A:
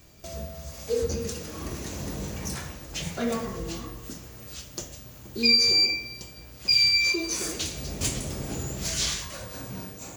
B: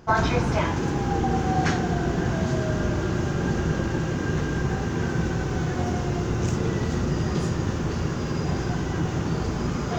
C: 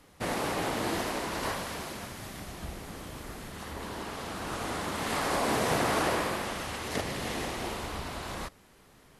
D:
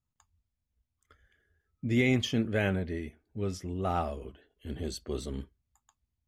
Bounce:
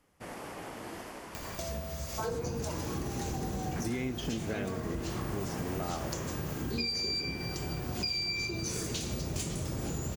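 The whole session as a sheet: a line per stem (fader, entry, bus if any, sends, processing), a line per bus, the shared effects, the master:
−4.5 dB, 1.35 s, no send, upward compression, threshold −25 dBFS
−10.5 dB, 2.10 s, no send, Bessel low-pass filter 1,100 Hz
−11.5 dB, 0.00 s, no send, parametric band 3,900 Hz −8 dB 0.3 octaves
−3.0 dB, 1.95 s, no send, parametric band 310 Hz +6.5 dB 0.72 octaves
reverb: not used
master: downward compressor 6 to 1, threshold −31 dBFS, peak gain reduction 11 dB

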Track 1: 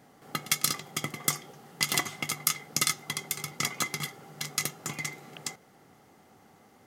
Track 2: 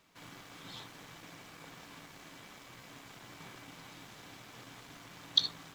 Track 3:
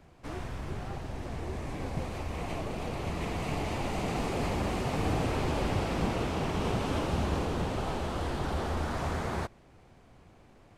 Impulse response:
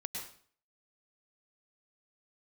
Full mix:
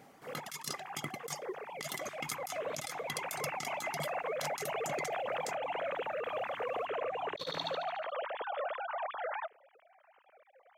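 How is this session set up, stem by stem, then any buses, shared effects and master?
−3.0 dB, 0.00 s, no send, no echo send, reverb reduction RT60 1.5 s
−5.0 dB, 2.00 s, no send, echo send −9 dB, adaptive Wiener filter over 9 samples; multiband upward and downward expander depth 100%
−8.0 dB, 0.00 s, no send, no echo send, three sine waves on the formant tracks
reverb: not used
echo: repeating echo 73 ms, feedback 57%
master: low-shelf EQ 70 Hz −6 dB; compressor whose output falls as the input rises −37 dBFS, ratio −1

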